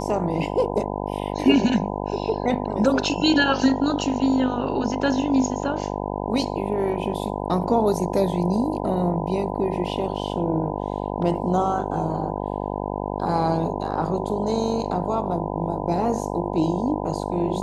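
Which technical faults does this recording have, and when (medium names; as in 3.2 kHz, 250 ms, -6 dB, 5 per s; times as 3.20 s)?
buzz 50 Hz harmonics 20 -28 dBFS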